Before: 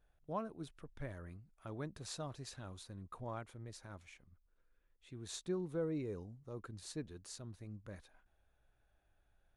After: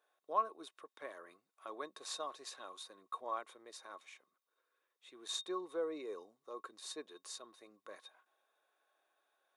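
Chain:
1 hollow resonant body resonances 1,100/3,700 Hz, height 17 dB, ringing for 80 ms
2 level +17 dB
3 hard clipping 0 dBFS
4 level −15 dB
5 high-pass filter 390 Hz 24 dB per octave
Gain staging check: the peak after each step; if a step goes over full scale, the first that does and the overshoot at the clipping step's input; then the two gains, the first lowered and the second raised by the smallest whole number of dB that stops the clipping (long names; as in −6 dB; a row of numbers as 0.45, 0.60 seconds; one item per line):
−22.5, −5.5, −5.5, −20.5, −21.0 dBFS
no step passes full scale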